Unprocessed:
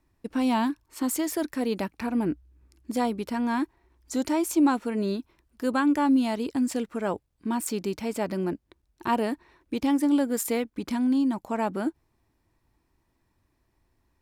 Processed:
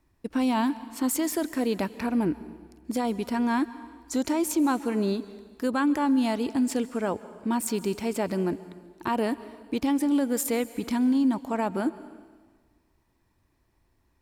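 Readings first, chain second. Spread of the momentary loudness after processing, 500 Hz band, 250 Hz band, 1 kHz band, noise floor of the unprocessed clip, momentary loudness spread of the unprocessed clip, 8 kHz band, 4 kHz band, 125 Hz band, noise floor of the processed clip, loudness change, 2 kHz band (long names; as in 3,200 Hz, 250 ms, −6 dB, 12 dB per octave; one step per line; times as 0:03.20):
9 LU, +0.5 dB, 0.0 dB, −0.5 dB, −73 dBFS, 10 LU, +1.5 dB, +0.5 dB, +1.5 dB, −69 dBFS, 0.0 dB, 0.0 dB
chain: brickwall limiter −19 dBFS, peak gain reduction 6 dB
dense smooth reverb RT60 1.5 s, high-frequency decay 1×, pre-delay 120 ms, DRR 16 dB
level +1.5 dB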